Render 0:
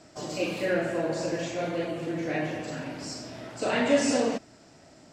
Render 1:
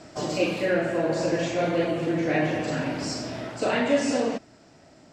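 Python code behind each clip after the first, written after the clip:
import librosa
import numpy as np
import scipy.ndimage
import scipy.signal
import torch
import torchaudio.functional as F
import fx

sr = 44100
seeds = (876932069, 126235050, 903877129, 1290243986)

y = fx.high_shelf(x, sr, hz=7300.0, db=-8.0)
y = fx.rider(y, sr, range_db=4, speed_s=0.5)
y = F.gain(torch.from_numpy(y), 4.0).numpy()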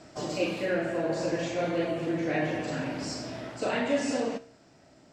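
y = fx.comb_fb(x, sr, f0_hz=66.0, decay_s=0.55, harmonics='all', damping=0.0, mix_pct=50)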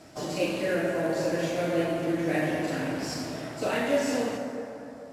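y = fx.cvsd(x, sr, bps=64000)
y = fx.rev_plate(y, sr, seeds[0], rt60_s=3.3, hf_ratio=0.45, predelay_ms=0, drr_db=3.0)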